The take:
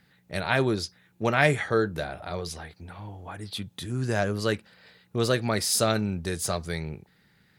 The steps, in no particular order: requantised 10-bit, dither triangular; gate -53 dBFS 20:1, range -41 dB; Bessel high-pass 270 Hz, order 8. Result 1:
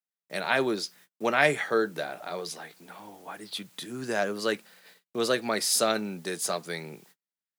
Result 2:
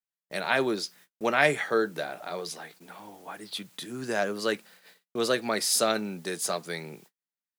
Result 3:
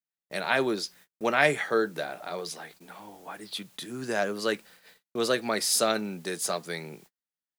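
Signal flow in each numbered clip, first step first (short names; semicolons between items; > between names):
requantised > gate > Bessel high-pass; requantised > Bessel high-pass > gate; Bessel high-pass > requantised > gate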